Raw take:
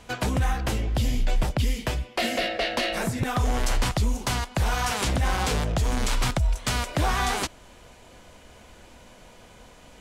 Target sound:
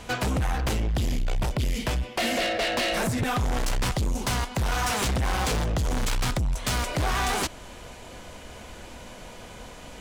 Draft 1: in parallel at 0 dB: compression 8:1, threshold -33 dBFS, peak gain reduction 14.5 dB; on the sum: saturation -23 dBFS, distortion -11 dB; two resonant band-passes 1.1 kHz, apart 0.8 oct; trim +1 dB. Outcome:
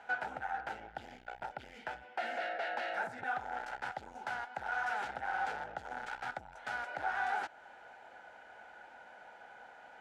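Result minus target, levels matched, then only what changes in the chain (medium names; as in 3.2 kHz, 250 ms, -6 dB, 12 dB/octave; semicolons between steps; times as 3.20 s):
compression: peak gain reduction +6 dB; 1 kHz band +6.0 dB
change: compression 8:1, threshold -26 dBFS, peak gain reduction 8.5 dB; remove: two resonant band-passes 1.1 kHz, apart 0.8 oct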